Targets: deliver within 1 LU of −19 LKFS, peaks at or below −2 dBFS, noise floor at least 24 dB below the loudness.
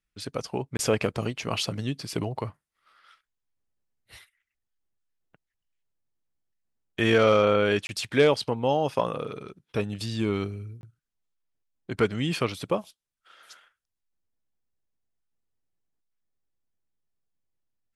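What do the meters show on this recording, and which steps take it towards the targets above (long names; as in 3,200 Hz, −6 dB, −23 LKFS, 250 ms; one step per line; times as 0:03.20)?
number of dropouts 3; longest dropout 21 ms; integrated loudness −26.5 LKFS; sample peak −7.5 dBFS; target loudness −19.0 LKFS
→ repair the gap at 0:00.77/0:07.87/0:10.81, 21 ms
level +7.5 dB
brickwall limiter −2 dBFS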